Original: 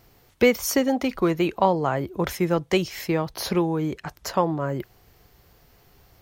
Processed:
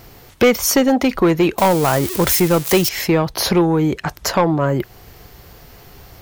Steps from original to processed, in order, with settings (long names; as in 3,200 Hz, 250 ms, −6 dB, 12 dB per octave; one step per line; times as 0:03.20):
0:01.58–0:02.89: spike at every zero crossing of −21 dBFS
in parallel at 0 dB: downward compressor, threshold −34 dBFS, peak gain reduction 19.5 dB
on the sum: soft clipping −14.5 dBFS, distortion −13 dB
level +8 dB